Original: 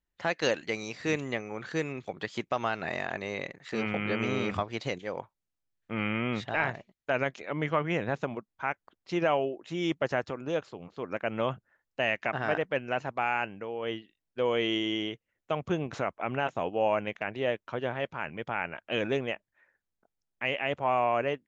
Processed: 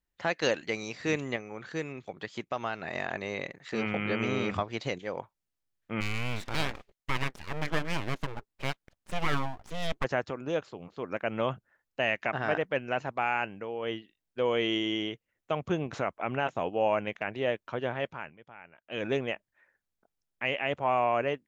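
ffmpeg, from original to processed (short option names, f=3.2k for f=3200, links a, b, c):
-filter_complex "[0:a]asplit=3[a][b][c];[a]afade=t=out:st=6:d=0.02[d];[b]aeval=exprs='abs(val(0))':c=same,afade=t=in:st=6:d=0.02,afade=t=out:st=10.03:d=0.02[e];[c]afade=t=in:st=10.03:d=0.02[f];[d][e][f]amix=inputs=3:normalize=0,asplit=5[g][h][i][j][k];[g]atrim=end=1.362[l];[h]atrim=start=1.358:end=2.952,asetpts=PTS-STARTPTS,volume=-3.5dB[m];[i]atrim=start=2.948:end=18.36,asetpts=PTS-STARTPTS,afade=t=out:st=15.122:d=0.29:silence=0.133352[n];[j]atrim=start=18.36:end=18.83,asetpts=PTS-STARTPTS,volume=-17.5dB[o];[k]atrim=start=18.83,asetpts=PTS-STARTPTS,afade=t=in:d=0.29:silence=0.133352[p];[l][m]acrossfade=d=0.004:c1=hsin:c2=hsin[q];[n][o][p]concat=n=3:v=0:a=1[r];[q][r]acrossfade=d=0.004:c1=hsin:c2=hsin"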